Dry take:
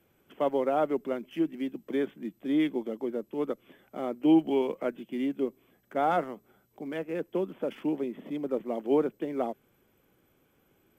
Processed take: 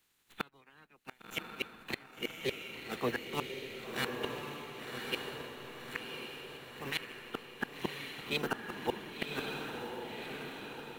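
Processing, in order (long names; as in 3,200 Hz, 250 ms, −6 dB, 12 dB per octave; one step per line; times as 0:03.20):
ceiling on every frequency bin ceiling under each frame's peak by 28 dB
noise reduction from a noise print of the clip's start 8 dB
parametric band 620 Hz −9 dB 0.6 octaves
formants moved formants +3 semitones
in parallel at −7 dB: slack as between gear wheels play −42 dBFS
on the sum: gate with flip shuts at −22 dBFS, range −36 dB
on a send: feedback delay with all-pass diffusion 1,091 ms, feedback 57%, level −3 dB
on the sum: level +1.5 dB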